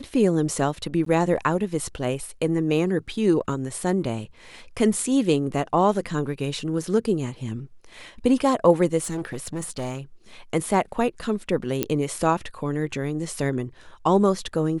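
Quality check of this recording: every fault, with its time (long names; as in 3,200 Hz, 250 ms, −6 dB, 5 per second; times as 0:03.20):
0:01.05–0:01.06: drop-out 13 ms
0:09.02–0:10.00: clipping −25 dBFS
0:11.83: click −6 dBFS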